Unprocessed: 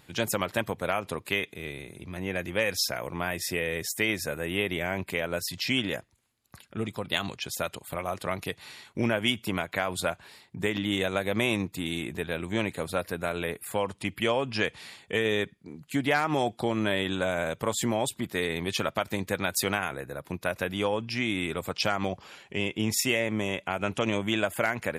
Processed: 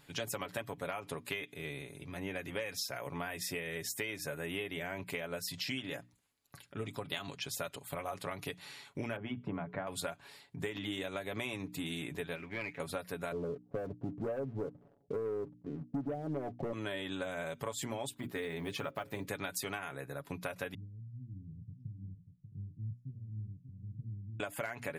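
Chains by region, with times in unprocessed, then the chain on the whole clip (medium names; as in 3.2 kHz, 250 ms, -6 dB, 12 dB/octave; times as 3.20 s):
9.16–9.87 s: low-pass 1.2 kHz + peaking EQ 160 Hz +8 dB 0.8 oct + hum notches 60/120/180/240/300/360/420 Hz
12.35–12.80 s: four-pole ladder low-pass 2.6 kHz, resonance 55% + waveshaping leveller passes 1
13.32–16.73 s: steep low-pass 650 Hz + waveshaping leveller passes 2
18.14–19.26 s: block-companded coder 7-bit + peaking EQ 6.6 kHz -8 dB 2.4 oct + hum notches 60/120/180/240/300/360/420/480/540 Hz
20.74–24.40 s: inverse Chebyshev low-pass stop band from 660 Hz, stop band 70 dB + delay 589 ms -9 dB
whole clip: hum notches 60/120/180/240/300 Hz; comb 7.1 ms, depth 53%; compression, threshold -30 dBFS; trim -5 dB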